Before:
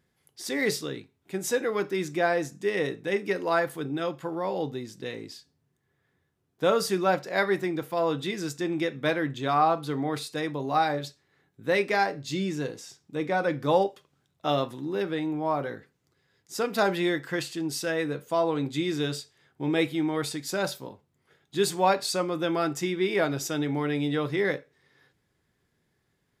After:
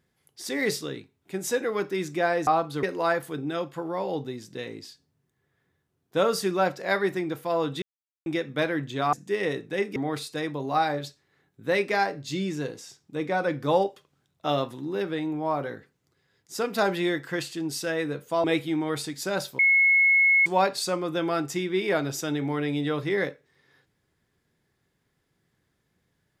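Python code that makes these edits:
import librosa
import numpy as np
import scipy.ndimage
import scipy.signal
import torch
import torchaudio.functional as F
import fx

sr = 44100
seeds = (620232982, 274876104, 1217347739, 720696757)

y = fx.edit(x, sr, fx.swap(start_s=2.47, length_s=0.83, other_s=9.6, other_length_s=0.36),
    fx.silence(start_s=8.29, length_s=0.44),
    fx.cut(start_s=18.44, length_s=1.27),
    fx.bleep(start_s=20.86, length_s=0.87, hz=2180.0, db=-16.0), tone=tone)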